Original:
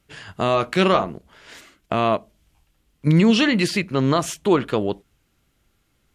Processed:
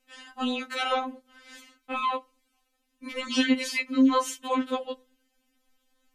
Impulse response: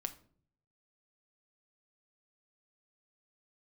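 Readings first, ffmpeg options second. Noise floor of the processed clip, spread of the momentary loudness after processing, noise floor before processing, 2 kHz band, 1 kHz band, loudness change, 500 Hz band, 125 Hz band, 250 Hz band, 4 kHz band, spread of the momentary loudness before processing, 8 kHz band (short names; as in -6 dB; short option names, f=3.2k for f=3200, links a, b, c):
-75 dBFS, 16 LU, -67 dBFS, -5.5 dB, -5.5 dB, -7.0 dB, -11.5 dB, under -35 dB, -6.5 dB, -5.0 dB, 11 LU, -4.5 dB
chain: -filter_complex "[0:a]asplit=2[a][b];[1:a]atrim=start_sample=2205[c];[b][c]afir=irnorm=-1:irlink=0,volume=-12.5dB[d];[a][d]amix=inputs=2:normalize=0,afftfilt=real='re*3.46*eq(mod(b,12),0)':imag='im*3.46*eq(mod(b,12),0)':win_size=2048:overlap=0.75,volume=-4dB"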